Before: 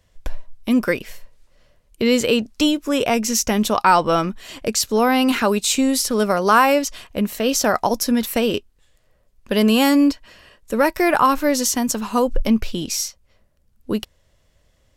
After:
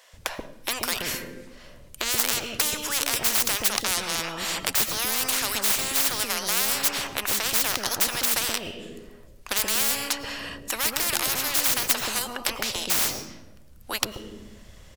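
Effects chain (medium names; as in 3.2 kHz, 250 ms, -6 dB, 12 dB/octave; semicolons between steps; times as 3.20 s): tracing distortion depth 0.15 ms; bands offset in time highs, lows 130 ms, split 530 Hz; on a send at -20 dB: reverberation RT60 0.95 s, pre-delay 70 ms; on the sum: spectrum-flattening compressor 10:1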